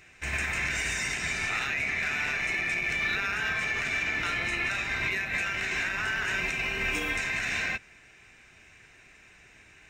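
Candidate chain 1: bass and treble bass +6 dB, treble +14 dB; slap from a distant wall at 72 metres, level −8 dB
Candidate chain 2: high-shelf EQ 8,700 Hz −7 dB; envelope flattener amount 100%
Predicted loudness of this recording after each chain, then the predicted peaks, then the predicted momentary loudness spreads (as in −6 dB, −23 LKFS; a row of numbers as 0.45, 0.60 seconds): −25.0, −25.5 LKFS; −11.5, −14.0 dBFS; 3, 1 LU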